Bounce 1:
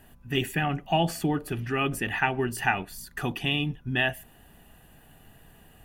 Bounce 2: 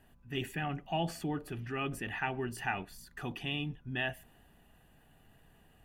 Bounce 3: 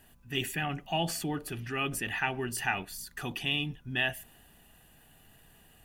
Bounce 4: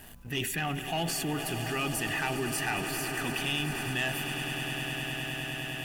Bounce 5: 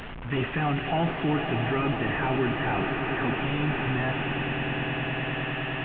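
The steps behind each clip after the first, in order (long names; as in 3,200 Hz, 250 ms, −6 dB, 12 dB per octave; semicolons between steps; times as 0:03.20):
high-shelf EQ 8,200 Hz −7.5 dB; transient designer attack −2 dB, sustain +2 dB; level −8.5 dB
high-shelf EQ 2,800 Hz +11.5 dB; level +1.5 dB
leveller curve on the samples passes 2; echo that builds up and dies away 102 ms, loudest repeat 8, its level −15 dB; envelope flattener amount 50%; level −8 dB
linear delta modulator 16 kbit/s, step −39 dBFS; level +7 dB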